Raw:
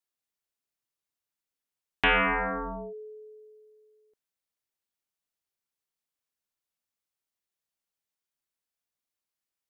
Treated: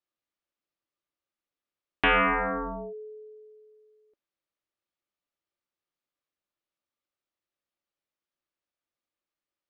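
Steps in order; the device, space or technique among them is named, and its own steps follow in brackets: inside a cardboard box (low-pass 4 kHz 12 dB/octave; small resonant body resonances 330/560/1200 Hz, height 8 dB)

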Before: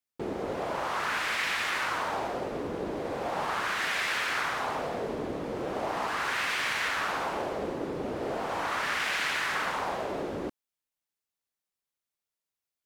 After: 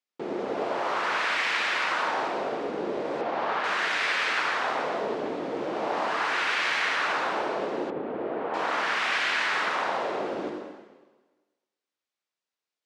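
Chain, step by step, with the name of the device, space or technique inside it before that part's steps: supermarket ceiling speaker (band-pass 240–5500 Hz; reverberation RT60 1.3 s, pre-delay 58 ms, DRR 2 dB); 3.21–3.64 s: Bessel low-pass 3.7 kHz, order 2; 7.90–8.54 s: distance through air 480 m; trim +1.5 dB

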